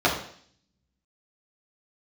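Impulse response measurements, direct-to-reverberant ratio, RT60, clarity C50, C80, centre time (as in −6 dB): −6.0 dB, 0.55 s, 6.5 dB, 10.0 dB, 29 ms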